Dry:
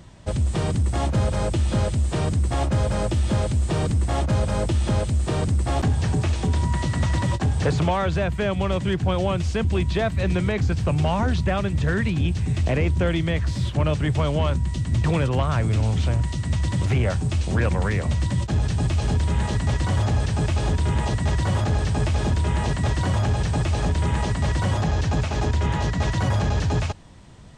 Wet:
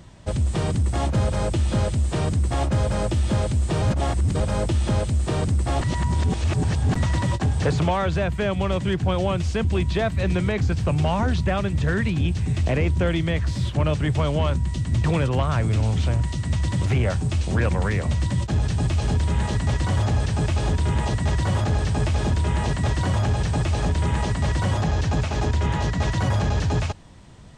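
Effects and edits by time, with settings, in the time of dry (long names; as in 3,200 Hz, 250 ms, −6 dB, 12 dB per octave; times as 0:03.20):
0:03.82–0:04.40: reverse
0:05.81–0:06.96: reverse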